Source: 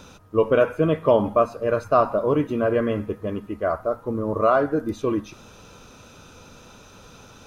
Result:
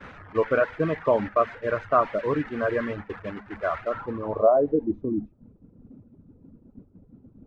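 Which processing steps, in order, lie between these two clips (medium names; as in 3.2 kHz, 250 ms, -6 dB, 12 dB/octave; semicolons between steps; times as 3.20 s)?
one-bit delta coder 64 kbps, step -24.5 dBFS; reverb removal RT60 0.8 s; low-pass sweep 1.8 kHz -> 260 Hz, 3.84–5.08 s; expander -24 dBFS; trim -4.5 dB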